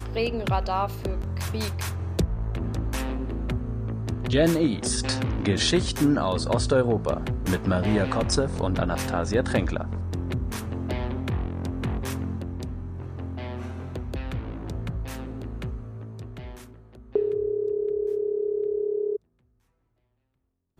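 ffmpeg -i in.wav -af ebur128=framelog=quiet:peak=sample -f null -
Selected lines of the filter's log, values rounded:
Integrated loudness:
  I:         -27.3 LUFS
  Threshold: -37.6 LUFS
Loudness range:
  LRA:        10.5 LU
  Threshold: -47.5 LUFS
  LRA low:   -34.5 LUFS
  LRA high:  -23.9 LUFS
Sample peak:
  Peak:      -10.2 dBFS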